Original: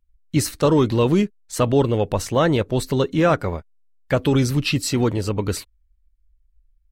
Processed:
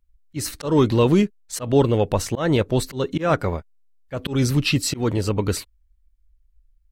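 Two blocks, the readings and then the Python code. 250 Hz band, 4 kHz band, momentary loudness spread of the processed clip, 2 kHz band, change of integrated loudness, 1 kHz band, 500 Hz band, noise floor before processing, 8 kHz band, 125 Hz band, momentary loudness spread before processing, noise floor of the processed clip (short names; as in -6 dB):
-1.0 dB, 0.0 dB, 12 LU, -1.5 dB, -1.0 dB, -2.0 dB, -1.5 dB, -62 dBFS, 0.0 dB, -1.0 dB, 7 LU, -61 dBFS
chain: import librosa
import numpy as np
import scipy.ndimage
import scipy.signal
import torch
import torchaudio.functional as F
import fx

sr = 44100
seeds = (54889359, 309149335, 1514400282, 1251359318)

y = fx.auto_swell(x, sr, attack_ms=170.0)
y = F.gain(torch.from_numpy(y), 1.0).numpy()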